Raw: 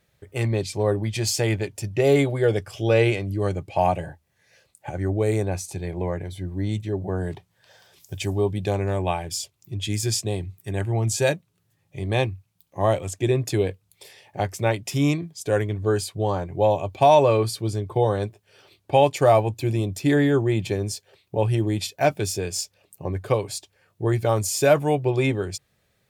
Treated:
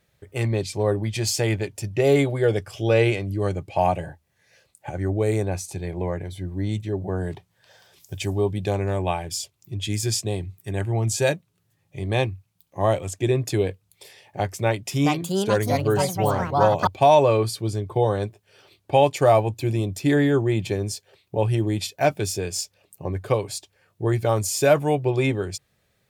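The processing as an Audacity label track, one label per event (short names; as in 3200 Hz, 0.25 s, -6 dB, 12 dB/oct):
14.620000	17.050000	echoes that change speed 0.432 s, each echo +5 st, echoes 2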